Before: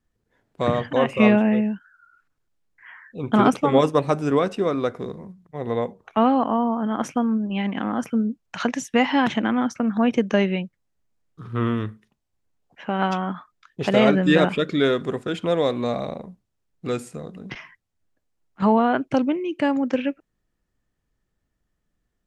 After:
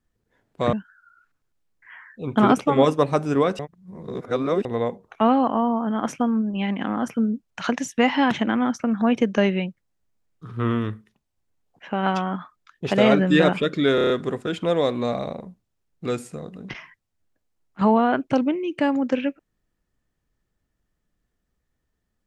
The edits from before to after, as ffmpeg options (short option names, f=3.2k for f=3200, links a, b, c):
-filter_complex "[0:a]asplit=9[a][b][c][d][e][f][g][h][i];[a]atrim=end=0.732[j];[b]atrim=start=1.688:end=4.552[k];[c]atrim=start=4.548:end=5.612,asetpts=PTS-STARTPTS,areverse[l];[d]atrim=start=5.608:end=14.942[m];[e]atrim=start=14.908:end=14.942[n];[f]atrim=start=14.908:end=14.942[o];[g]atrim=start=14.908:end=14.942[p];[h]atrim=start=14.908:end=14.942[q];[i]atrim=start=14.908[r];[j][k]acrossfade=d=0.004:c1=hsin:c2=hsin[s];[s][l]acrossfade=d=0.004:c1=hsin:c2=hsin[t];[t][m]acrossfade=d=0.004:c1=hsin:c2=hsin[u];[u][n]acrossfade=d=0.004:c1=hsin:c2=hsin[v];[v][o]acrossfade=d=0.004:c1=hsin:c2=hsin[w];[w][p]acrossfade=d=0.004:c1=hsin:c2=hsin[x];[x][q]acrossfade=d=0.004:c1=hsin:c2=hsin[y];[y][r]acrossfade=d=0.004:c1=hsin:c2=hsin"